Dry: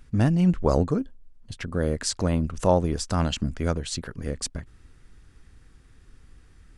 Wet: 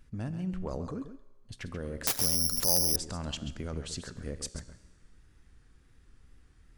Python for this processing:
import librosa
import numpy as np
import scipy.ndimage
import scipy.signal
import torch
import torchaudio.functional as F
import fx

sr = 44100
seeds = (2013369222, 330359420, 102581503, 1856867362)

p1 = fx.over_compress(x, sr, threshold_db=-27.0, ratio=-0.5)
p2 = x + F.gain(torch.from_numpy(p1), 1.5).numpy()
p3 = fx.comb_fb(p2, sr, f0_hz=60.0, decay_s=1.3, harmonics='all', damping=0.0, mix_pct=50)
p4 = fx.wow_flutter(p3, sr, seeds[0], rate_hz=2.1, depth_cents=57.0)
p5 = p4 + 10.0 ** (-10.5 / 20.0) * np.pad(p4, (int(135 * sr / 1000.0), 0))[:len(p4)]
p6 = fx.resample_bad(p5, sr, factor=8, down='none', up='zero_stuff', at=(2.07, 2.96))
y = F.gain(torch.from_numpy(p6), -11.5).numpy()